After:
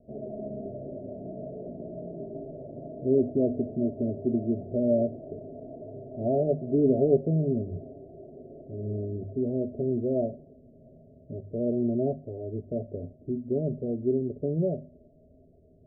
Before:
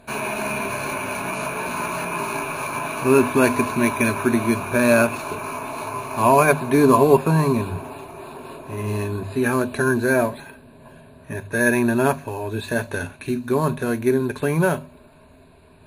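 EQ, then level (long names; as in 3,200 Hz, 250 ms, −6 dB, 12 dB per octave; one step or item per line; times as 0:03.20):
Butterworth low-pass 670 Hz 96 dB per octave
−7.0 dB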